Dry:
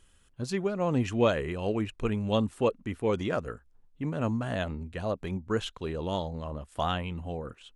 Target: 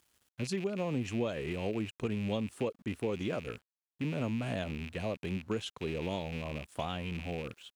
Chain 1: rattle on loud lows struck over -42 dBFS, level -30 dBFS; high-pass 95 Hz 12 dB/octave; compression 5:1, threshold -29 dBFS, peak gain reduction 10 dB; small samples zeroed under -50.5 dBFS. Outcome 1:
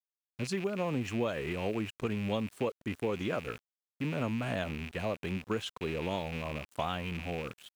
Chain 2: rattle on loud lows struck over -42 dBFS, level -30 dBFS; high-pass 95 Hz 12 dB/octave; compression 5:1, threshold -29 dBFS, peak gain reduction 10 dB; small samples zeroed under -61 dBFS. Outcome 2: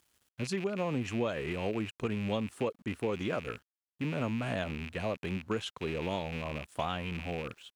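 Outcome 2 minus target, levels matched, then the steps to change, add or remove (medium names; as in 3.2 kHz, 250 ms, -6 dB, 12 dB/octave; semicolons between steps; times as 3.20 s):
1 kHz band +3.0 dB
add after compression: dynamic bell 1.3 kHz, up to -6 dB, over -49 dBFS, Q 0.83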